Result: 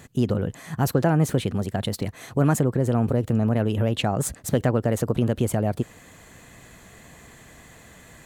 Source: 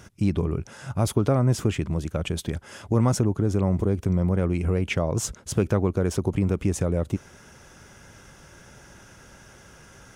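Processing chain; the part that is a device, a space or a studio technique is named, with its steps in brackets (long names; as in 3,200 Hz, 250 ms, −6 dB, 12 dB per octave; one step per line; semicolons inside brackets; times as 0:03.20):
nightcore (speed change +23%)
level +1 dB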